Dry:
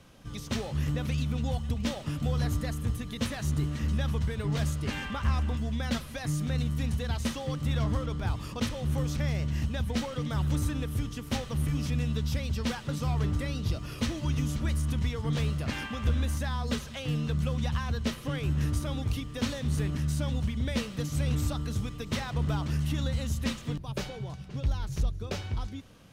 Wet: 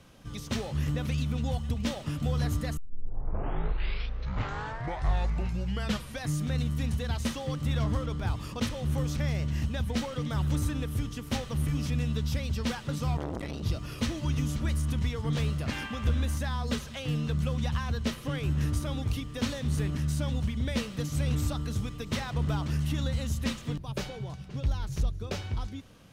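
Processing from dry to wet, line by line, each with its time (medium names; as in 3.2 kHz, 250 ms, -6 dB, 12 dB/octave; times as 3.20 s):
2.77 s: tape start 3.47 s
13.17–13.63 s: transformer saturation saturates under 580 Hz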